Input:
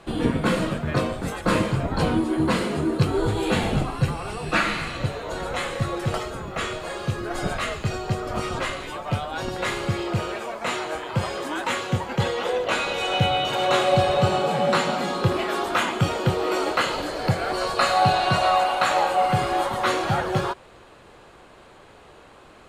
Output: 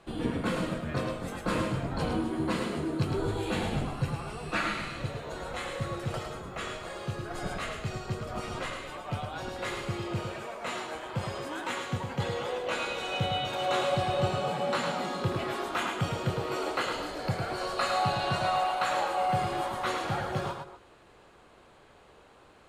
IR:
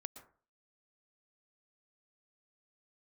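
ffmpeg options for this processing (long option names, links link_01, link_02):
-filter_complex "[0:a]asplit=2[link_01][link_02];[1:a]atrim=start_sample=2205,atrim=end_sample=6615,adelay=107[link_03];[link_02][link_03]afir=irnorm=-1:irlink=0,volume=-1dB[link_04];[link_01][link_04]amix=inputs=2:normalize=0,volume=-9dB"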